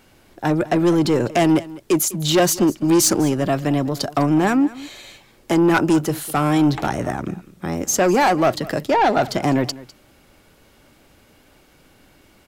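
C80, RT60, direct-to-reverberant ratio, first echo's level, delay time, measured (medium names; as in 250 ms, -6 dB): no reverb, no reverb, no reverb, -19.0 dB, 202 ms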